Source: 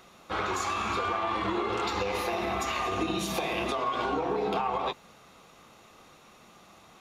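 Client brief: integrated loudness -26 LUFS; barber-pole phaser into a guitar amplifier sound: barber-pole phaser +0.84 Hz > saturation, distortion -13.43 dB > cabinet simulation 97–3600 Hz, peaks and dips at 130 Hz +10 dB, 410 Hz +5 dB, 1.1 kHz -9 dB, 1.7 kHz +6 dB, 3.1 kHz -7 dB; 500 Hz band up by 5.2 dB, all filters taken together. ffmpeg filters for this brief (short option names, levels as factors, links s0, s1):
-filter_complex "[0:a]equalizer=f=500:t=o:g=3.5,asplit=2[s0][s1];[s1]afreqshift=0.84[s2];[s0][s2]amix=inputs=2:normalize=1,asoftclip=threshold=0.0335,highpass=97,equalizer=f=130:t=q:w=4:g=10,equalizer=f=410:t=q:w=4:g=5,equalizer=f=1100:t=q:w=4:g=-9,equalizer=f=1700:t=q:w=4:g=6,equalizer=f=3100:t=q:w=4:g=-7,lowpass=f=3600:w=0.5412,lowpass=f=3600:w=1.3066,volume=2.99"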